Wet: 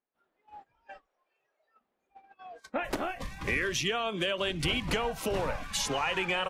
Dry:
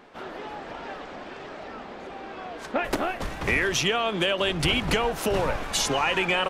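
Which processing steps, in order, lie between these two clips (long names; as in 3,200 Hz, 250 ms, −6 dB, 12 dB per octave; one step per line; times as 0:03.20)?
noise reduction from a noise print of the clip's start 16 dB
noise gate −42 dBFS, range −20 dB
0:01.06–0:01.81: low shelf with overshoot 340 Hz −10.5 dB, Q 1.5
level −6 dB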